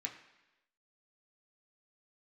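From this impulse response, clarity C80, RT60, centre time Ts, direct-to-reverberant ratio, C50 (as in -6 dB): 11.0 dB, 1.0 s, 20 ms, 0.0 dB, 9.5 dB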